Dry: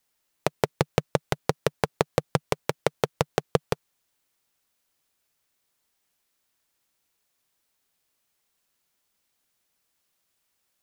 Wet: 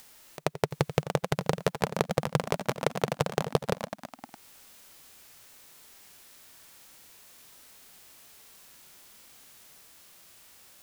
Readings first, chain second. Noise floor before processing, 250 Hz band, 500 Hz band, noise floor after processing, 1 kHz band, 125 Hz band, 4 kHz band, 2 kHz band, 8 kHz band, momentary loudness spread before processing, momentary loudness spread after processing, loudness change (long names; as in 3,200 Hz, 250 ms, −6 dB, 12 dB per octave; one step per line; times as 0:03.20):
−76 dBFS, −0.5 dB, −2.5 dB, −61 dBFS, −2.0 dB, −0.5 dB, −2.0 dB, −2.0 dB, −1.0 dB, 5 LU, 21 LU, −2.0 dB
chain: echo ahead of the sound 84 ms −17.5 dB
harmonic and percussive parts rebalanced percussive −10 dB
upward compression, threshold −45 dBFS
delay with pitch and tempo change per echo 709 ms, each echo +3 semitones, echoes 3, each echo −6 dB
level +6.5 dB